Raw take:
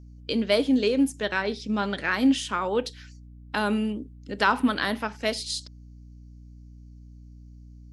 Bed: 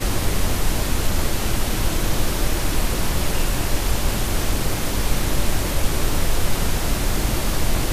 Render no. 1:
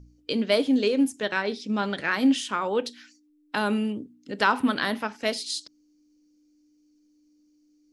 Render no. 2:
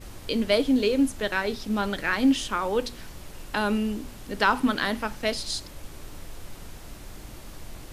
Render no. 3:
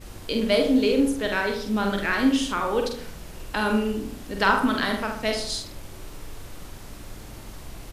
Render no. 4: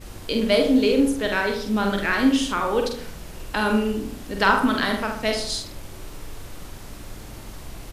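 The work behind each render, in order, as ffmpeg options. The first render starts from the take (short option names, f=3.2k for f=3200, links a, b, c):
-af "bandreject=f=60:t=h:w=4,bandreject=f=120:t=h:w=4,bandreject=f=180:t=h:w=4,bandreject=f=240:t=h:w=4"
-filter_complex "[1:a]volume=-21dB[a];[0:a][a]amix=inputs=2:normalize=0"
-filter_complex "[0:a]asplit=2[a][b];[b]adelay=46,volume=-5dB[c];[a][c]amix=inputs=2:normalize=0,asplit=2[d][e];[e]adelay=76,lowpass=f=1.8k:p=1,volume=-6dB,asplit=2[f][g];[g]adelay=76,lowpass=f=1.8k:p=1,volume=0.46,asplit=2[h][i];[i]adelay=76,lowpass=f=1.8k:p=1,volume=0.46,asplit=2[j][k];[k]adelay=76,lowpass=f=1.8k:p=1,volume=0.46,asplit=2[l][m];[m]adelay=76,lowpass=f=1.8k:p=1,volume=0.46,asplit=2[n][o];[o]adelay=76,lowpass=f=1.8k:p=1,volume=0.46[p];[f][h][j][l][n][p]amix=inputs=6:normalize=0[q];[d][q]amix=inputs=2:normalize=0"
-af "volume=2dB"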